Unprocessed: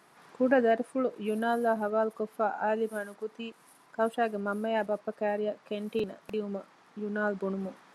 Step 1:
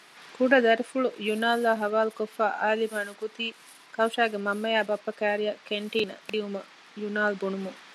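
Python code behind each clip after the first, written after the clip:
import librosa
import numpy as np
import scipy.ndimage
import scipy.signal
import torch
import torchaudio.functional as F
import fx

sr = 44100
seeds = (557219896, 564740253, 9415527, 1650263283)

y = fx.weighting(x, sr, curve='D')
y = F.gain(torch.from_numpy(y), 3.5).numpy()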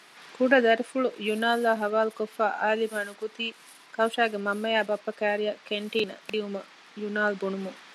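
y = scipy.signal.sosfilt(scipy.signal.butter(2, 100.0, 'highpass', fs=sr, output='sos'), x)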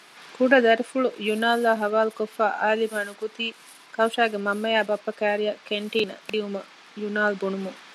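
y = fx.notch(x, sr, hz=1900.0, q=29.0)
y = F.gain(torch.from_numpy(y), 3.0).numpy()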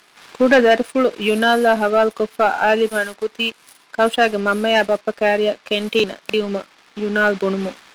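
y = fx.leveller(x, sr, passes=2)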